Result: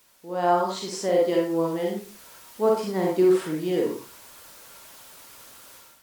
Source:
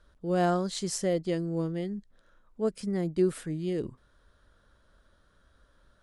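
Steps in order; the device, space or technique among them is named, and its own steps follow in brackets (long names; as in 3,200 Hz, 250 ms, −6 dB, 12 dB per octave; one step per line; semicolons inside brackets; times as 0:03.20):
filmed off a television (band-pass filter 250–6,500 Hz; parametric band 930 Hz +12 dB 0.52 octaves; convolution reverb RT60 0.40 s, pre-delay 40 ms, DRR −1.5 dB; white noise bed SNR 25 dB; automatic gain control gain up to 13 dB; level −7 dB; AAC 96 kbit/s 48,000 Hz)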